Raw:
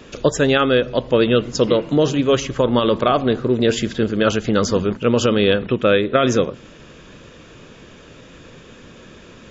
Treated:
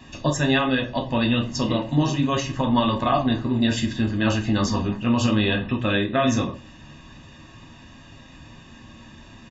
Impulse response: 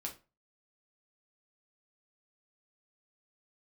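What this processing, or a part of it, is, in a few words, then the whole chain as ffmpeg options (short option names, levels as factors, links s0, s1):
microphone above a desk: -filter_complex "[0:a]aecho=1:1:1.1:0.81[s0];[1:a]atrim=start_sample=2205[s1];[s0][s1]afir=irnorm=-1:irlink=0,volume=0.668"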